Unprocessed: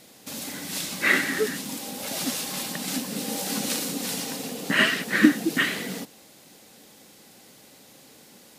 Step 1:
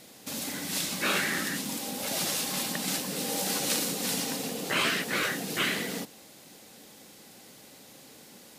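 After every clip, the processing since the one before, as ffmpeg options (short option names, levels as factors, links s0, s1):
-af "afftfilt=real='re*lt(hypot(re,im),0.224)':imag='im*lt(hypot(re,im),0.224)':win_size=1024:overlap=0.75"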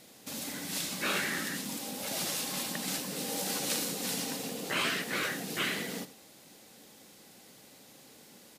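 -af "aecho=1:1:81:0.178,volume=0.631"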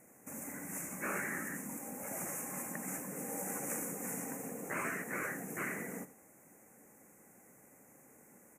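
-af "asuperstop=centerf=3900:order=8:qfactor=0.89,volume=0.596"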